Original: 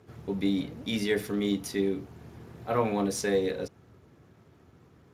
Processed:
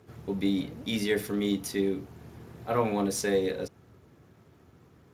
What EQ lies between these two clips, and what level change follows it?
treble shelf 11 kHz +6.5 dB; 0.0 dB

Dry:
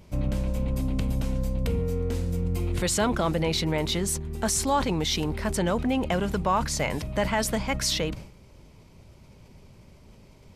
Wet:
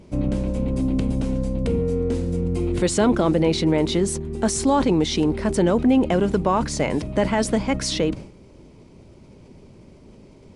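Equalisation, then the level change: brick-wall FIR low-pass 11 kHz; peaking EQ 320 Hz +11 dB 1.7 oct; 0.0 dB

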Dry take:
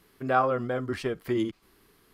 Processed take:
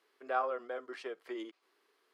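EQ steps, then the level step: high-pass 390 Hz 24 dB/octave; distance through air 58 m; -8.5 dB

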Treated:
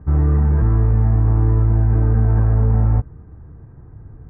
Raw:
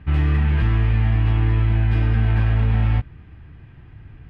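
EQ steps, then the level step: low-pass 1.3 kHz 24 dB/octave; distance through air 330 m; peaking EQ 460 Hz +6.5 dB 0.43 oct; +3.0 dB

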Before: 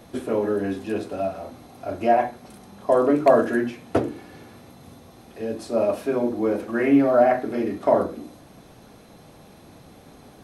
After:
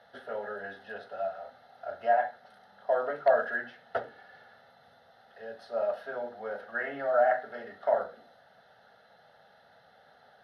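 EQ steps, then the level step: band-pass filter 1.4 kHz, Q 1.1; static phaser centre 1.6 kHz, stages 8; 0.0 dB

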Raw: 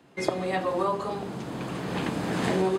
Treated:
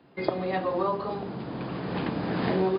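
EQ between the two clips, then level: brick-wall FIR low-pass 5.1 kHz; peaking EQ 2.9 kHz -3.5 dB 2 oct; 0.0 dB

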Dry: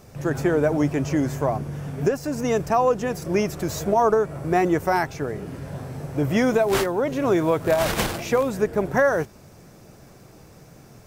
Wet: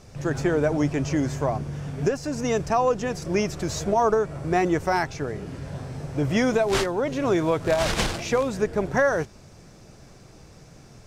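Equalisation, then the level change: low-pass 5.7 kHz 12 dB/octave; bass shelf 64 Hz +9.5 dB; treble shelf 4.1 kHz +11 dB; -2.5 dB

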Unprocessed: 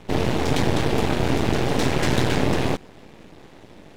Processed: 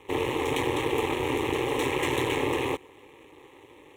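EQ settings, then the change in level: high-pass 240 Hz 6 dB/octave; static phaser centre 990 Hz, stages 8; 0.0 dB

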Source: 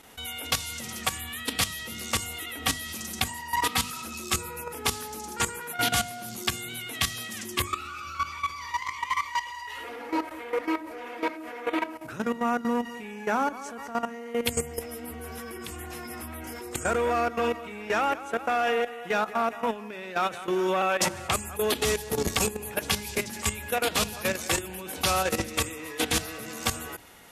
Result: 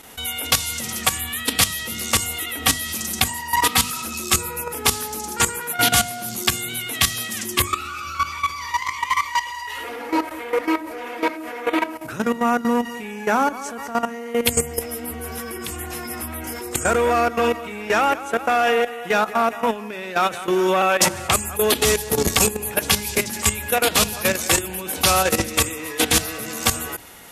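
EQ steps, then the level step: treble shelf 7.7 kHz +6 dB; +7.0 dB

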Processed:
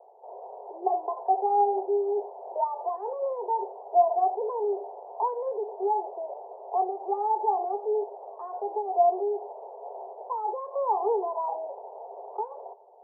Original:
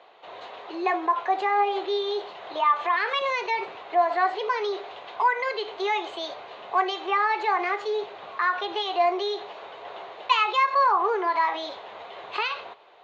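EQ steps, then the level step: Chebyshev band-pass 390–910 Hz, order 4; +1.5 dB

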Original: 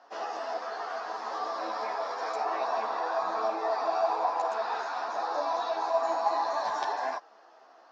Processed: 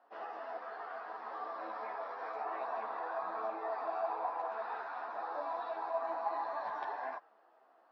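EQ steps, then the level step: dynamic bell 1.7 kHz, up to +4 dB, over -46 dBFS, Q 0.99; distance through air 360 m; -8.5 dB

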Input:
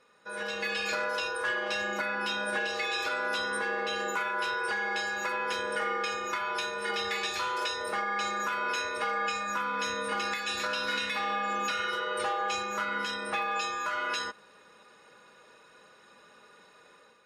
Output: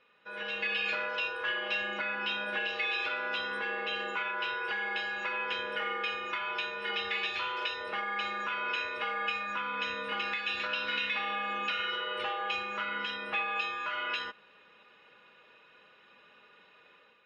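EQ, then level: resonant low-pass 2.9 kHz, resonance Q 3.4; -5.5 dB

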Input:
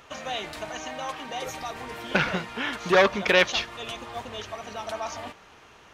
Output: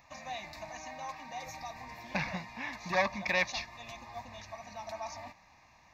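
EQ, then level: static phaser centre 2.1 kHz, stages 8; -6.0 dB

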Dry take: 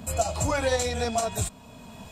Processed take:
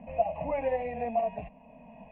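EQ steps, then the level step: rippled Chebyshev low-pass 2.8 kHz, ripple 6 dB; static phaser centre 370 Hz, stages 6; 0.0 dB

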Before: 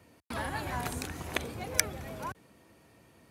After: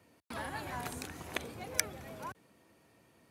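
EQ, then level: high-pass 110 Hz 6 dB/octave; -4.5 dB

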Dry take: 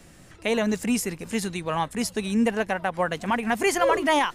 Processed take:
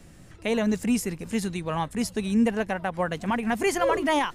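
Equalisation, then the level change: bass shelf 290 Hz +7 dB; -3.5 dB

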